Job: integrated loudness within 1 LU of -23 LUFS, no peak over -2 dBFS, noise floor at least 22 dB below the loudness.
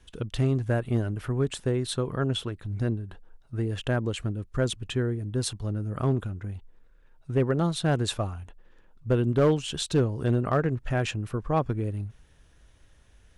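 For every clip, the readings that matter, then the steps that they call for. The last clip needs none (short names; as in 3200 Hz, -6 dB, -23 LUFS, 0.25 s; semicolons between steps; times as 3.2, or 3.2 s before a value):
clipped 0.4%; flat tops at -15.5 dBFS; loudness -28.0 LUFS; peak -15.5 dBFS; loudness target -23.0 LUFS
-> clip repair -15.5 dBFS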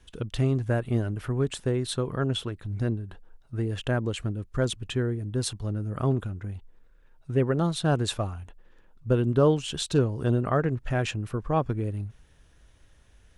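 clipped 0.0%; loudness -28.0 LUFS; peak -10.0 dBFS; loudness target -23.0 LUFS
-> gain +5 dB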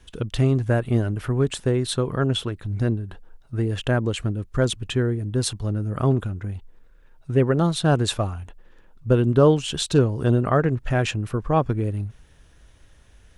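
loudness -23.0 LUFS; peak -5.0 dBFS; noise floor -53 dBFS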